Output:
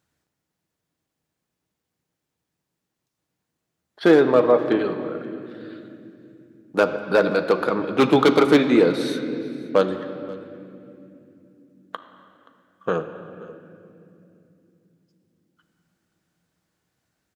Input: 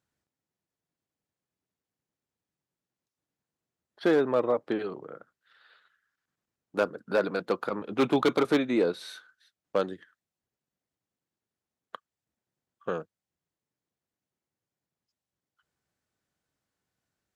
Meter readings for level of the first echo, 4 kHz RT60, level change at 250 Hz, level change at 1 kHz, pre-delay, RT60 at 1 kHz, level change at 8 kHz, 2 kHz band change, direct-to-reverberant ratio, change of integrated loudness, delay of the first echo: -22.5 dB, 2.0 s, +9.5 dB, +9.0 dB, 6 ms, 2.2 s, n/a, +9.0 dB, 7.0 dB, +8.5 dB, 0.526 s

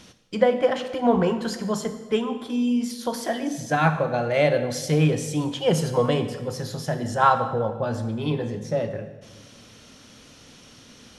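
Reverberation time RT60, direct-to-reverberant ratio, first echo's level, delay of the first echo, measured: 1.3 s, 9.0 dB, none, none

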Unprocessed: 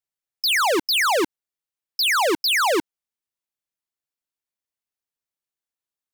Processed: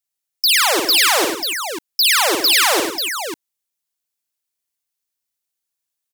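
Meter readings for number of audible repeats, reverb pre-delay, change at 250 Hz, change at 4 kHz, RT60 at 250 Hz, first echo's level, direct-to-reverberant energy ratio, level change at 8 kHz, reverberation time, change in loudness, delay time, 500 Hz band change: 5, none, +1.5 dB, +7.5 dB, none, -5.5 dB, none, +10.5 dB, none, +5.0 dB, 54 ms, +1.5 dB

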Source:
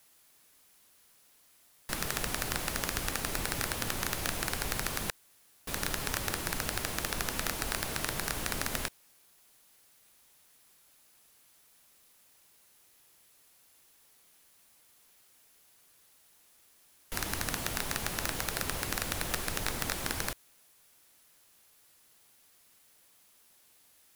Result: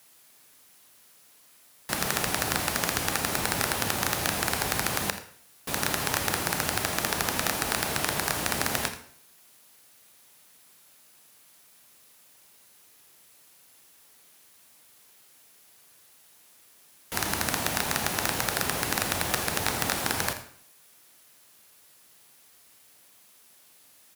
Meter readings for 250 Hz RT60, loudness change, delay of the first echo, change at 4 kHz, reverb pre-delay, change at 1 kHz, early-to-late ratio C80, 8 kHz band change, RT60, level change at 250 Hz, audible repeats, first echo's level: 0.65 s, +6.5 dB, 83 ms, +6.0 dB, 28 ms, +8.5 dB, 12.0 dB, +6.0 dB, 0.55 s, +6.5 dB, 1, -14.5 dB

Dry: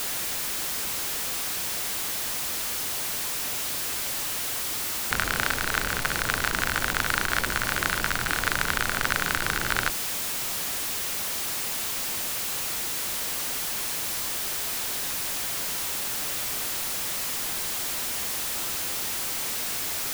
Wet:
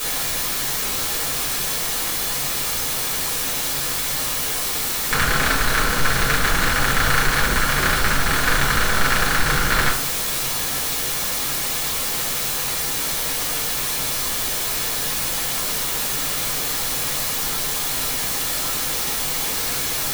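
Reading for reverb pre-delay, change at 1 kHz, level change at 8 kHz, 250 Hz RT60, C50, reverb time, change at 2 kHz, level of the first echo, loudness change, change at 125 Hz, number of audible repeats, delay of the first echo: 4 ms, +7.5 dB, +6.0 dB, 0.65 s, 7.5 dB, 0.45 s, +6.5 dB, none, +6.5 dB, +10.5 dB, none, none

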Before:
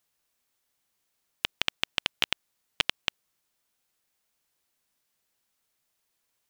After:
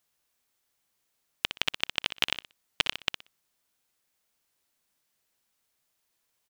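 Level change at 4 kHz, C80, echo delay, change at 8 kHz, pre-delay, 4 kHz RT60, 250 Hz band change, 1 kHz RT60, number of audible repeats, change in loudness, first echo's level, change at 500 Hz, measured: +0.5 dB, none, 61 ms, +0.5 dB, none, none, +0.5 dB, none, 2, +0.5 dB, -10.0 dB, +0.5 dB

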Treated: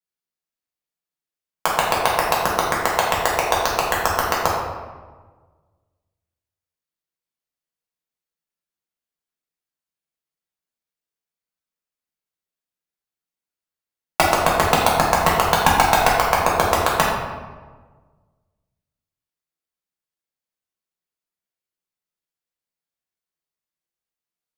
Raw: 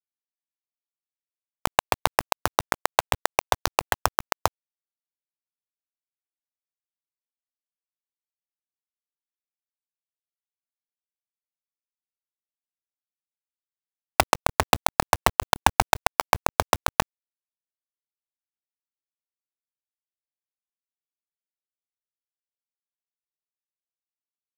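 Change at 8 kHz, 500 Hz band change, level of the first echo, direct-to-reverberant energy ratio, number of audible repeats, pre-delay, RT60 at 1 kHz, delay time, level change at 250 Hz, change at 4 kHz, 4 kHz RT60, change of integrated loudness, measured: +3.5 dB, +7.0 dB, none, -5.5 dB, none, 3 ms, 1.3 s, none, +8.0 dB, +4.5 dB, 0.80 s, +5.5 dB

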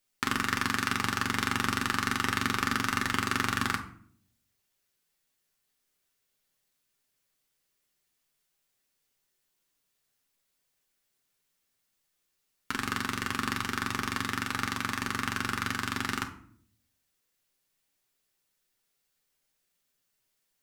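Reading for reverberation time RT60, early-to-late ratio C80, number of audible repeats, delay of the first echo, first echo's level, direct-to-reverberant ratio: 0.55 s, 15.5 dB, none, none, none, 2.0 dB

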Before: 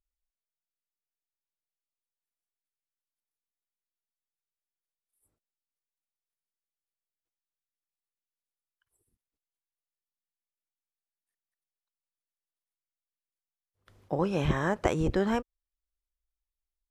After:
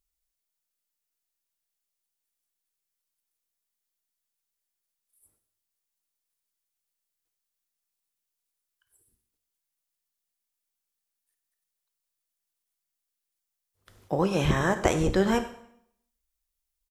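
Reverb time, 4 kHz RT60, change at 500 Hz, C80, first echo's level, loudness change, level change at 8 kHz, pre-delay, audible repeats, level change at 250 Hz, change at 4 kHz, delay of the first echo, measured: 0.70 s, 0.65 s, +3.5 dB, 13.5 dB, -18.0 dB, +3.5 dB, +10.0 dB, 6 ms, 1, +3.0 dB, +7.0 dB, 97 ms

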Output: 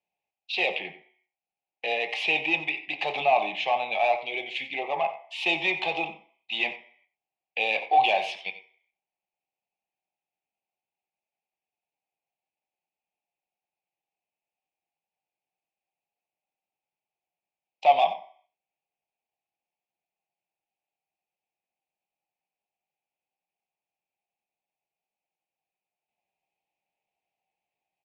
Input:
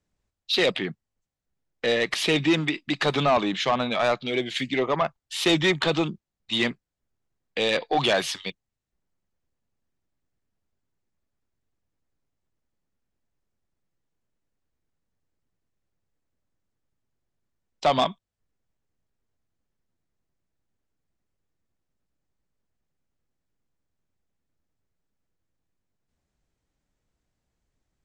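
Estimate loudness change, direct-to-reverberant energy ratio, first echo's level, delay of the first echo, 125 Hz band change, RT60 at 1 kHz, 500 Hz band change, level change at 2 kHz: -1.5 dB, 4.5 dB, -15.5 dB, 90 ms, under -15 dB, 0.50 s, -4.5 dB, +0.5 dB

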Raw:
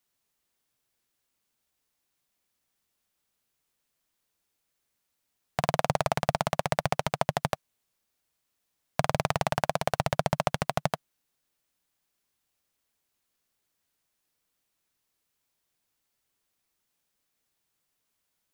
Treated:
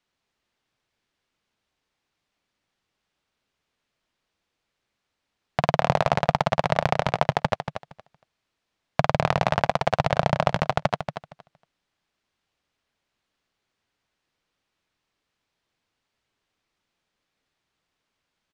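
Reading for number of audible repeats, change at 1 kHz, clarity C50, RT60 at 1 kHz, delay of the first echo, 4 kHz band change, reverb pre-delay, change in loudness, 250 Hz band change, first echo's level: 2, +5.5 dB, none, none, 0.232 s, +3.5 dB, none, +5.5 dB, +5.5 dB, -8.5 dB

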